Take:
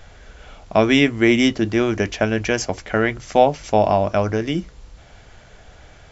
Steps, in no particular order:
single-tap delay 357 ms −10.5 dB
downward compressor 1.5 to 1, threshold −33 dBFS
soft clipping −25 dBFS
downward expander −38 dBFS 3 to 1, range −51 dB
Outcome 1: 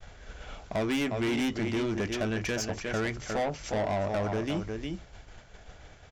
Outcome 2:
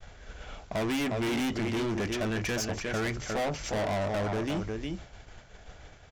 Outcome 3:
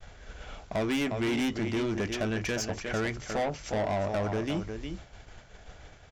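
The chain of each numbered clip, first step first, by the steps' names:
downward expander, then single-tap delay, then downward compressor, then soft clipping
single-tap delay, then soft clipping, then downward expander, then downward compressor
downward compressor, then single-tap delay, then soft clipping, then downward expander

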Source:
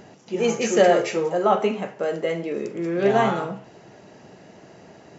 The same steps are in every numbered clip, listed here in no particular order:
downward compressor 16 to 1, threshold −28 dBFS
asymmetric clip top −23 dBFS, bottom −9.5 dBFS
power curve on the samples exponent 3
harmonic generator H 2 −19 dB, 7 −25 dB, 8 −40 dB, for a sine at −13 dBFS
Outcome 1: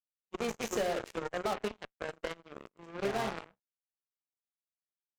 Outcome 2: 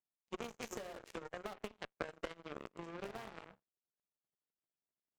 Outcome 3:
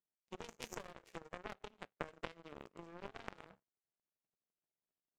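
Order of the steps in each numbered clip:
harmonic generator, then power curve on the samples, then asymmetric clip, then downward compressor
harmonic generator, then downward compressor, then power curve on the samples, then asymmetric clip
asymmetric clip, then downward compressor, then harmonic generator, then power curve on the samples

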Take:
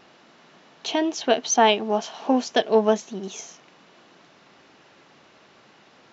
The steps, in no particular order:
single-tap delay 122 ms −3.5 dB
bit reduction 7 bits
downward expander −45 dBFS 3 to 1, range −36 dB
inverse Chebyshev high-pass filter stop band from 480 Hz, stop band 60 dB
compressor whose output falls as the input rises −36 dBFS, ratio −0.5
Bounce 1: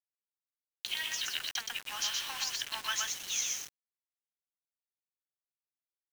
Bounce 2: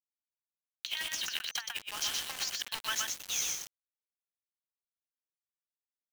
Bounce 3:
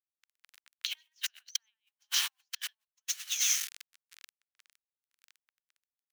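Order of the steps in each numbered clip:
downward expander, then inverse Chebyshev high-pass filter, then compressor whose output falls as the input rises, then single-tap delay, then bit reduction
downward expander, then inverse Chebyshev high-pass filter, then bit reduction, then compressor whose output falls as the input rises, then single-tap delay
single-tap delay, then bit reduction, then compressor whose output falls as the input rises, then inverse Chebyshev high-pass filter, then downward expander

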